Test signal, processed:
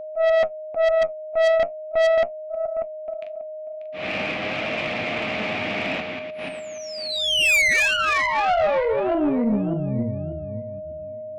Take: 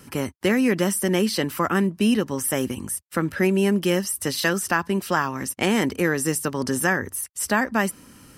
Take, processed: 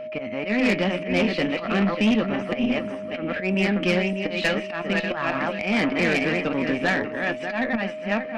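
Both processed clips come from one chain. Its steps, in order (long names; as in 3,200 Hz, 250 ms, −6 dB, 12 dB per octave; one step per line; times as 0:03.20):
feedback delay that plays each chunk backwards 295 ms, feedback 48%, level −5.5 dB
volume swells 141 ms
flanger 0.4 Hz, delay 8.2 ms, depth 3.2 ms, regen +64%
loudspeaker in its box 220–3,100 Hz, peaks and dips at 240 Hz +3 dB, 390 Hz −7 dB, 680 Hz +4 dB, 980 Hz −7 dB, 1,500 Hz −6 dB, 2,400 Hz +10 dB
tube saturation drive 24 dB, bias 0.35
steady tone 620 Hz −40 dBFS
level +8.5 dB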